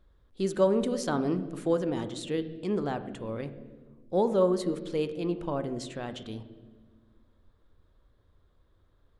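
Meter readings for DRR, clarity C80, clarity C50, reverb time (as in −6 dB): 10.0 dB, 14.5 dB, 12.5 dB, 1.4 s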